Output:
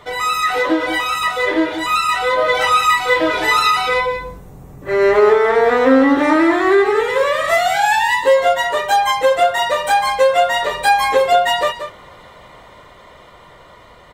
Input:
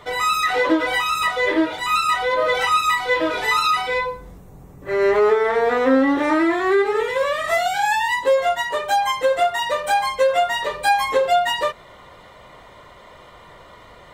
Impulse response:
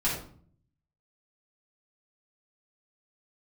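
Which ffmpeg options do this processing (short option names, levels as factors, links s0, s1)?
-filter_complex "[0:a]dynaudnorm=f=390:g=11:m=1.78,asplit=2[s0][s1];[s1]aecho=0:1:183:0.335[s2];[s0][s2]amix=inputs=2:normalize=0,volume=1.12"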